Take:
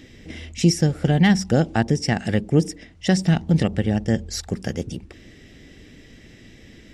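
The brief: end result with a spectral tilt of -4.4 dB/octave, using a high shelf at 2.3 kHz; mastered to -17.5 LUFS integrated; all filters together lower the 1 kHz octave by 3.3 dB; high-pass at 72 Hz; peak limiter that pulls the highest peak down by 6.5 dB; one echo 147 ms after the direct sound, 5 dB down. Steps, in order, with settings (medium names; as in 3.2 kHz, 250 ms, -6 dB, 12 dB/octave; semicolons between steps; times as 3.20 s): high-pass 72 Hz; peaking EQ 1 kHz -6.5 dB; treble shelf 2.3 kHz +8.5 dB; peak limiter -11 dBFS; delay 147 ms -5 dB; trim +4.5 dB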